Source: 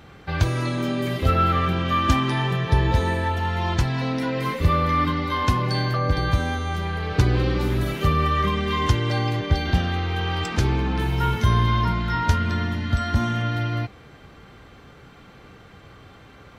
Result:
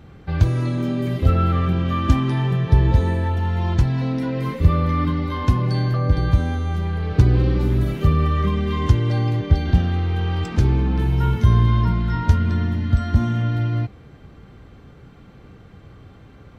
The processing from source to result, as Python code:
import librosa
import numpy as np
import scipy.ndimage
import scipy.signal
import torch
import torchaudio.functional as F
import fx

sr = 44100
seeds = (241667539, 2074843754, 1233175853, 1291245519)

y = fx.low_shelf(x, sr, hz=450.0, db=12.0)
y = F.gain(torch.from_numpy(y), -6.5).numpy()